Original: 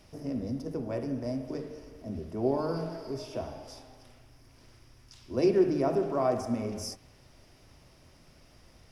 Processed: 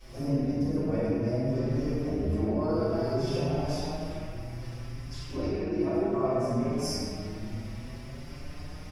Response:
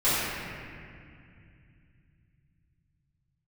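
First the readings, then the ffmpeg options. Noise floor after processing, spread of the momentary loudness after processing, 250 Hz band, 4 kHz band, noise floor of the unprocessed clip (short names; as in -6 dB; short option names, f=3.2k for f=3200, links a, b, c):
-42 dBFS, 13 LU, +3.5 dB, +5.5 dB, -58 dBFS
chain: -filter_complex "[0:a]acompressor=threshold=-38dB:ratio=12[a];[1:a]atrim=start_sample=2205[b];[a][b]afir=irnorm=-1:irlink=0,asplit=2[c][d];[d]adelay=5.6,afreqshift=0.63[e];[c][e]amix=inputs=2:normalize=1"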